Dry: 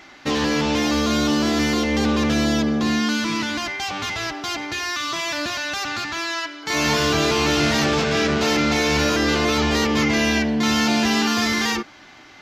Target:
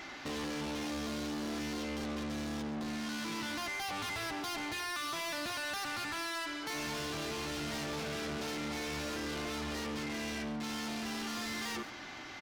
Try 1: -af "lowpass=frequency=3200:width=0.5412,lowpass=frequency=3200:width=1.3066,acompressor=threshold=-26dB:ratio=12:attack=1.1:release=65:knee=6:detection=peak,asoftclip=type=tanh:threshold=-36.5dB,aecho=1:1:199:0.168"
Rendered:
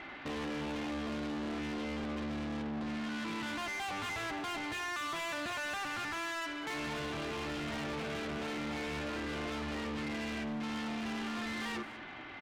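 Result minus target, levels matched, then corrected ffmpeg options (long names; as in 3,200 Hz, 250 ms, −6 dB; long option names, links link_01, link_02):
echo 61 ms late; 4,000 Hz band −3.0 dB
-af "acompressor=threshold=-26dB:ratio=12:attack=1.1:release=65:knee=6:detection=peak,asoftclip=type=tanh:threshold=-36.5dB,aecho=1:1:138:0.168"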